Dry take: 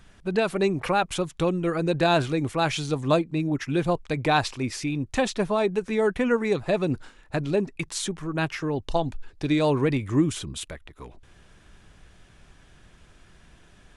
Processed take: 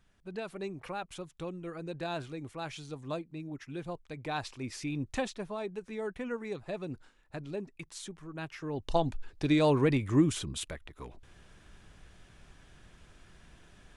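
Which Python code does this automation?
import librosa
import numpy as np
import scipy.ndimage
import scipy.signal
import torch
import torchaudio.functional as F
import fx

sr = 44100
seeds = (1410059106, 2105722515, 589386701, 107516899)

y = fx.gain(x, sr, db=fx.line((4.19, -15.5), (5.08, -5.5), (5.38, -14.0), (8.5, -14.0), (8.97, -3.0)))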